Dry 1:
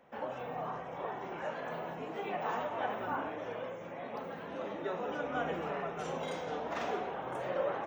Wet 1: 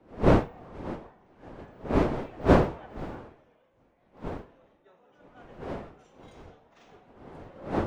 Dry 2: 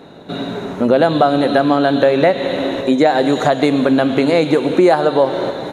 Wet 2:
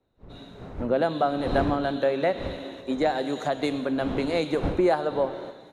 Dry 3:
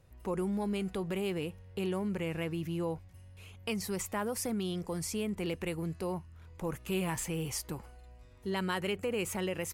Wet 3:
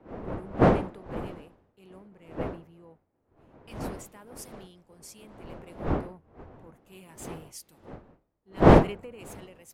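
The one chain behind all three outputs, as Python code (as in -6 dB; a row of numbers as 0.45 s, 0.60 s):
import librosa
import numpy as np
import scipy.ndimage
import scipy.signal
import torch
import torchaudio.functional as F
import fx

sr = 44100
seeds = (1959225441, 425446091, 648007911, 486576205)

y = fx.dmg_wind(x, sr, seeds[0], corner_hz=520.0, level_db=-25.0)
y = fx.band_widen(y, sr, depth_pct=100)
y = y * 10.0 ** (-12.0 / 20.0)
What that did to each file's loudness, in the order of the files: +10.0 LU, -11.5 LU, +10.0 LU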